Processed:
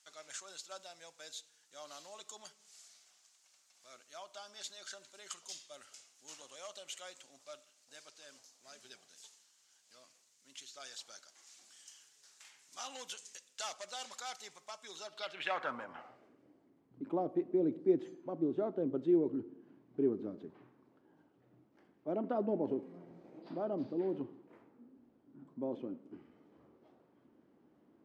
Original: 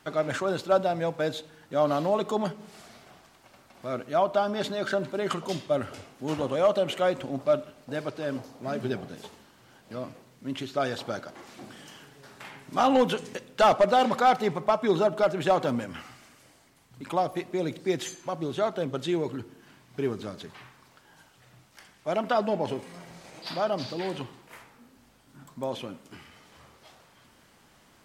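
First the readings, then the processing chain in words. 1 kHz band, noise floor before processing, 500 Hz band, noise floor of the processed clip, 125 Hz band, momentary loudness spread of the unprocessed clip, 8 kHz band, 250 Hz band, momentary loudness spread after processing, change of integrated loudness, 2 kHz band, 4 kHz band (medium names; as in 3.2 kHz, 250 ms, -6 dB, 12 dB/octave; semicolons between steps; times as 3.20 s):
-19.0 dB, -59 dBFS, -13.0 dB, -70 dBFS, -15.5 dB, 20 LU, -3.0 dB, -7.0 dB, 22 LU, -11.5 dB, -14.0 dB, -10.5 dB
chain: band-pass sweep 6.8 kHz -> 310 Hz, 14.96–16.40 s; trim +1 dB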